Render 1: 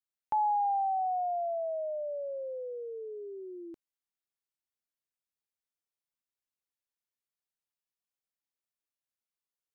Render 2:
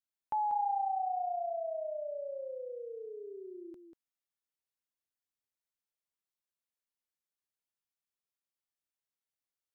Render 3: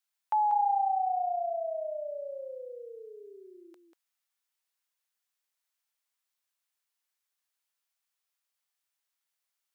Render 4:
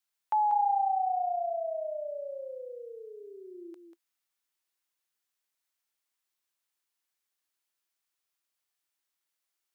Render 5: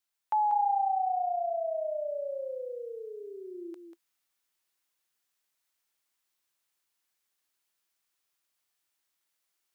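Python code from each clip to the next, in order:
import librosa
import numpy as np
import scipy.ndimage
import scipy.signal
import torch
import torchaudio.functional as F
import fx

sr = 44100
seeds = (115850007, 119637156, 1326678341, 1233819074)

y1 = x + 10.0 ** (-7.5 / 20.0) * np.pad(x, (int(190 * sr / 1000.0), 0))[:len(x)]
y1 = F.gain(torch.from_numpy(y1), -4.0).numpy()
y2 = scipy.signal.sosfilt(scipy.signal.butter(2, 810.0, 'highpass', fs=sr, output='sos'), y1)
y2 = F.gain(torch.from_numpy(y2), 8.5).numpy()
y3 = fx.peak_eq(y2, sr, hz=340.0, db=9.5, octaves=0.26)
y4 = fx.rider(y3, sr, range_db=4, speed_s=2.0)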